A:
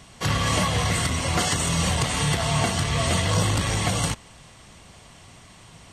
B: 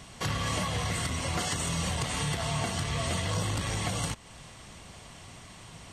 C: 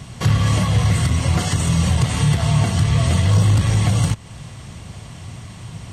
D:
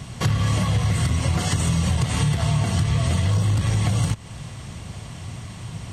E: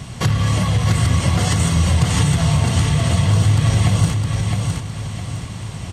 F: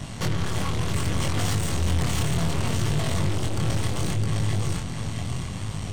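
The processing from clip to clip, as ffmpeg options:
ffmpeg -i in.wav -af "acompressor=threshold=-34dB:ratio=2" out.wav
ffmpeg -i in.wav -af "equalizer=frequency=110:width_type=o:width=1.8:gain=13,asoftclip=type=hard:threshold=-14dB,volume=6dB" out.wav
ffmpeg -i in.wav -af "acompressor=threshold=-17dB:ratio=6" out.wav
ffmpeg -i in.wav -af "aecho=1:1:661|1322|1983|2644:0.631|0.215|0.0729|0.0248,volume=3.5dB" out.wav
ffmpeg -i in.wav -af "aeval=exprs='(tanh(17.8*val(0)+0.75)-tanh(0.75))/17.8':channel_layout=same,flanger=delay=19.5:depth=5.9:speed=0.68,volume=4.5dB" out.wav

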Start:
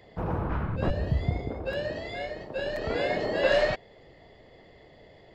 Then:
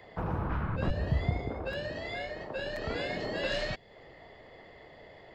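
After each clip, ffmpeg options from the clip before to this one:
ffmpeg -i in.wav -filter_complex "[0:a]equalizer=frequency=1300:width=0.57:gain=8.5,acrossover=split=300|3000[link_01][link_02][link_03];[link_02]acompressor=threshold=-34dB:ratio=6[link_04];[link_01][link_04][link_03]amix=inputs=3:normalize=0,volume=-2.5dB" out.wav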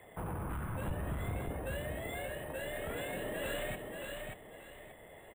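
ffmpeg -i in.wav -af "aresample=8000,asoftclip=type=tanh:threshold=-30dB,aresample=44100,acrusher=samples=4:mix=1:aa=0.000001,aecho=1:1:583|1166|1749|2332:0.596|0.155|0.0403|0.0105,volume=-3.5dB" out.wav

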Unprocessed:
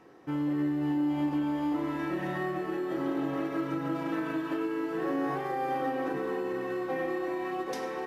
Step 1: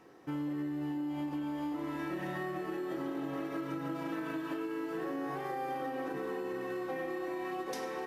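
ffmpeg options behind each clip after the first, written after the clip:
ffmpeg -i in.wav -af "highshelf=frequency=4700:gain=6,acompressor=threshold=-31dB:ratio=6,volume=-2.5dB" out.wav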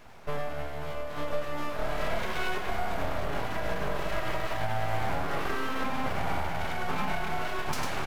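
ffmpeg -i in.wav -filter_complex "[0:a]asplit=2[link_01][link_02];[link_02]aecho=0:1:100:0.596[link_03];[link_01][link_03]amix=inputs=2:normalize=0,aeval=exprs='abs(val(0))':channel_layout=same,volume=8.5dB" out.wav

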